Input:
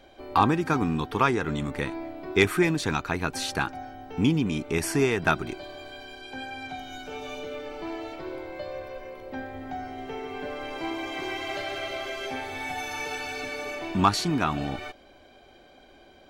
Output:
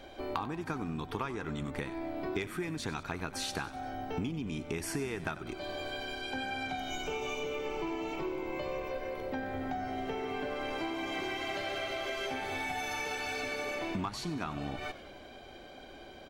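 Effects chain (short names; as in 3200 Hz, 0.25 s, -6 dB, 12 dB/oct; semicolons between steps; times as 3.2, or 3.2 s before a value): 6.9–8.91 ripple EQ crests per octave 0.73, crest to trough 9 dB; compressor 16:1, threshold -36 dBFS, peak gain reduction 22.5 dB; frequency-shifting echo 94 ms, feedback 54%, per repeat -68 Hz, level -14.5 dB; gain +3.5 dB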